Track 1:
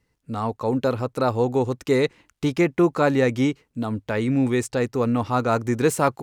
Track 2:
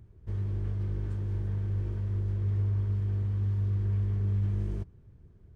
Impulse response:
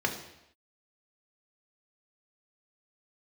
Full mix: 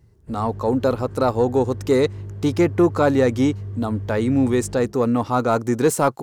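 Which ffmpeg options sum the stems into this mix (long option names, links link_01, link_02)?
-filter_complex "[0:a]equalizer=frequency=66:width=0.79:gain=-8,acontrast=81,volume=-3dB[link_01];[1:a]volume=-6dB,asplit=2[link_02][link_03];[link_03]volume=-3.5dB[link_04];[2:a]atrim=start_sample=2205[link_05];[link_04][link_05]afir=irnorm=-1:irlink=0[link_06];[link_01][link_02][link_06]amix=inputs=3:normalize=0,equalizer=frequency=2400:width_type=o:width=1.1:gain=-6.5"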